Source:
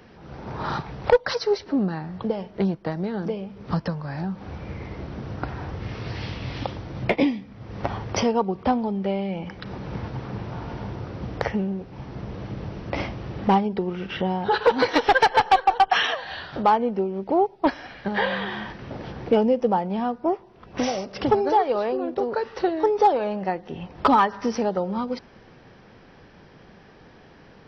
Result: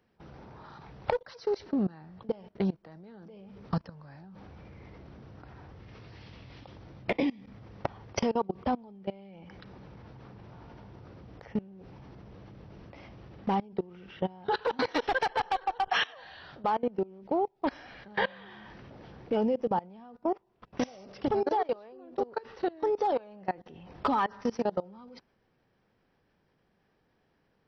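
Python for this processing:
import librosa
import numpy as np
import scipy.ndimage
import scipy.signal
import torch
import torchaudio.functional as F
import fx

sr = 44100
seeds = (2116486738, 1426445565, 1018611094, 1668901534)

y = fx.level_steps(x, sr, step_db=23)
y = F.gain(torch.from_numpy(y), -3.0).numpy()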